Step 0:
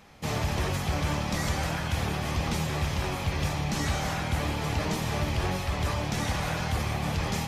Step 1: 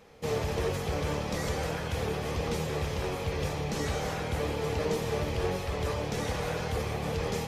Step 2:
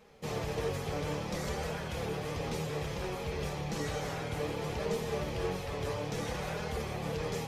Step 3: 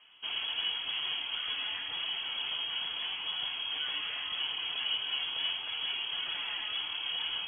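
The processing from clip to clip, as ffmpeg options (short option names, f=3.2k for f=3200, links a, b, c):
-af "equalizer=f=460:t=o:w=0.41:g=15,volume=-4.5dB"
-af "flanger=delay=4.6:depth=2.8:regen=-38:speed=0.6:shape=triangular"
-af "lowpass=f=2.9k:t=q:w=0.5098,lowpass=f=2.9k:t=q:w=0.6013,lowpass=f=2.9k:t=q:w=0.9,lowpass=f=2.9k:t=q:w=2.563,afreqshift=-3400"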